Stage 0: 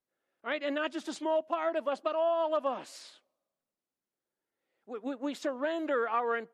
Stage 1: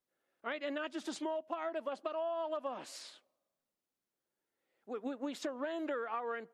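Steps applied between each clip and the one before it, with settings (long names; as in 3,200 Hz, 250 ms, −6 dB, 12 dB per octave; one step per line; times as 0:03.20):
downward compressor, threshold −35 dBFS, peak gain reduction 10 dB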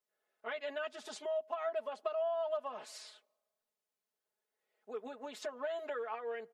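low shelf with overshoot 370 Hz −7 dB, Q 1.5
comb filter 4.7 ms, depth 89%
level −4 dB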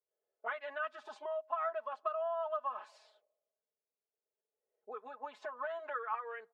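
envelope filter 470–1,200 Hz, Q 2.4, up, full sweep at −40.5 dBFS
noise reduction from a noise print of the clip's start 7 dB
level +8 dB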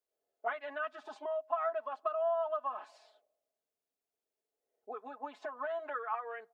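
hollow resonant body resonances 290/710 Hz, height 11 dB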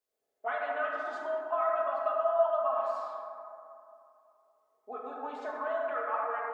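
dense smooth reverb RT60 2.7 s, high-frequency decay 0.3×, DRR −3.5 dB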